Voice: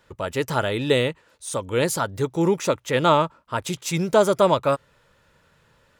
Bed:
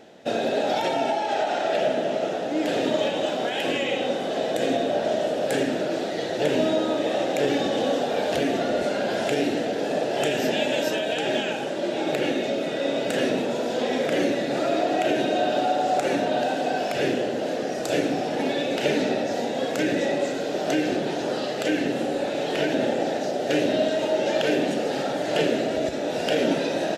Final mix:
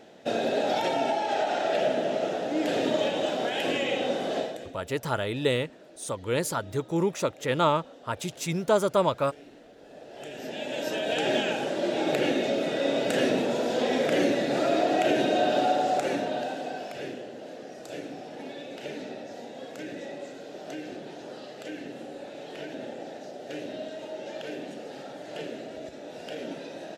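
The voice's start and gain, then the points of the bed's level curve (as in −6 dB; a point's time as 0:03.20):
4.55 s, −5.5 dB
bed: 0:04.39 −2.5 dB
0:04.77 −26 dB
0:09.76 −26 dB
0:11.17 −1 dB
0:15.70 −1 dB
0:17.25 −14.5 dB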